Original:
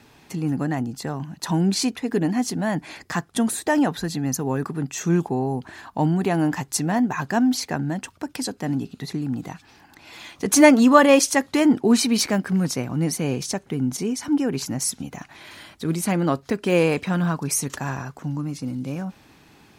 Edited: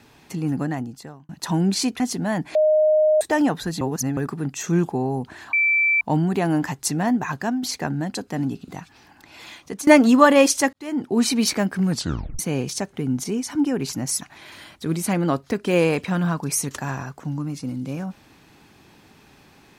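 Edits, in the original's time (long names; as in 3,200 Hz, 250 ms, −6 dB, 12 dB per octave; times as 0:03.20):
0:00.61–0:01.29: fade out
0:02.00–0:02.37: remove
0:02.92–0:03.58: beep over 617 Hz −13.5 dBFS
0:04.18–0:04.54: reverse
0:05.90: insert tone 2,330 Hz −15.5 dBFS 0.48 s
0:07.08–0:07.52: fade out equal-power, to −10 dB
0:08.04–0:08.45: remove
0:08.98–0:09.41: remove
0:10.22–0:10.60: fade out, to −22.5 dB
0:11.46–0:12.07: fade in
0:12.64: tape stop 0.48 s
0:14.94–0:15.20: remove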